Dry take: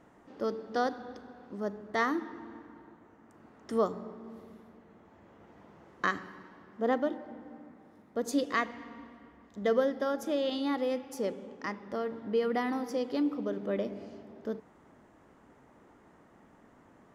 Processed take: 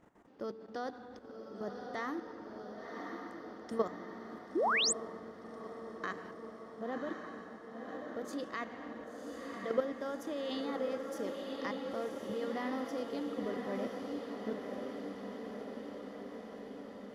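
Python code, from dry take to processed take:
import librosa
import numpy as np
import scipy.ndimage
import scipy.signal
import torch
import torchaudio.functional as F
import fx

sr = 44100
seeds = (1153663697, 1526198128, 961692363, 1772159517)

y = fx.level_steps(x, sr, step_db=12)
y = fx.echo_diffused(y, sr, ms=1064, feedback_pct=69, wet_db=-4)
y = fx.spec_paint(y, sr, seeds[0], shape='rise', start_s=4.55, length_s=0.38, low_hz=290.0, high_hz=9000.0, level_db=-28.0)
y = y * librosa.db_to_amplitude(-2.0)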